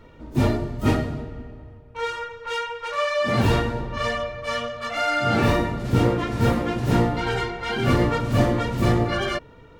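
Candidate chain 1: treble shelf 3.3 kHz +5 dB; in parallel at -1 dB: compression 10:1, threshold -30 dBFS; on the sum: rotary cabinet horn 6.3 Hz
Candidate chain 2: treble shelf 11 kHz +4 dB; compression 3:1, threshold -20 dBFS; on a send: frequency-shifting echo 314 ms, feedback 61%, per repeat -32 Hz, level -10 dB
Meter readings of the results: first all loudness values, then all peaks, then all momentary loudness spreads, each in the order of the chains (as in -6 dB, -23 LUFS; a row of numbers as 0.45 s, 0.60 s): -23.5 LUFS, -25.5 LUFS; -6.0 dBFS, -11.0 dBFS; 9 LU, 7 LU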